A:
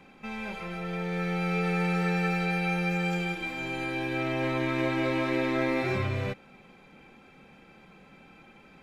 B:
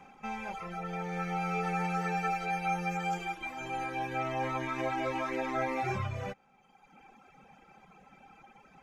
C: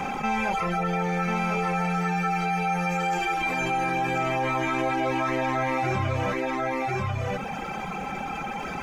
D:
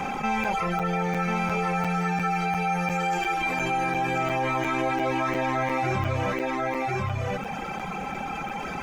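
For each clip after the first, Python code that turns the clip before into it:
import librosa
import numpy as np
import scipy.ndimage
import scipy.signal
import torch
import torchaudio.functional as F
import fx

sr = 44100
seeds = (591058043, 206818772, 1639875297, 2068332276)

y1 = fx.dereverb_blind(x, sr, rt60_s=1.4)
y1 = fx.graphic_eq_31(y1, sr, hz=(315, 800, 1250, 4000, 6300), db=(-4, 11, 6, -7, 8))
y1 = y1 * librosa.db_to_amplitude(-3.0)
y2 = fx.rider(y1, sr, range_db=10, speed_s=0.5)
y2 = y2 + 10.0 ** (-5.5 / 20.0) * np.pad(y2, (int(1044 * sr / 1000.0), 0))[:len(y2)]
y2 = fx.env_flatten(y2, sr, amount_pct=70)
y2 = y2 * librosa.db_to_amplitude(4.5)
y3 = fx.buffer_crackle(y2, sr, first_s=0.44, period_s=0.35, block=256, kind='zero')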